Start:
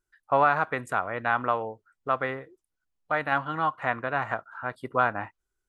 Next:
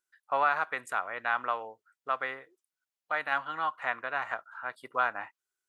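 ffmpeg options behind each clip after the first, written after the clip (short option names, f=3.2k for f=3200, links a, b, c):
-af "highpass=f=1.4k:p=1"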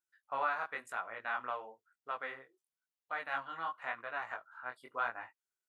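-af "flanger=delay=17:depth=7:speed=0.97,volume=-4.5dB"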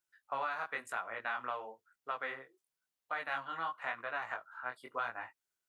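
-filter_complex "[0:a]acrossover=split=180|3000[a][b][c];[b]acompressor=threshold=-37dB:ratio=6[d];[a][d][c]amix=inputs=3:normalize=0,volume=3.5dB"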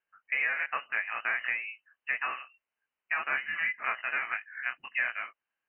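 -af "lowpass=f=2.6k:t=q:w=0.5098,lowpass=f=2.6k:t=q:w=0.6013,lowpass=f=2.6k:t=q:w=0.9,lowpass=f=2.6k:t=q:w=2.563,afreqshift=-3100,volume=7dB"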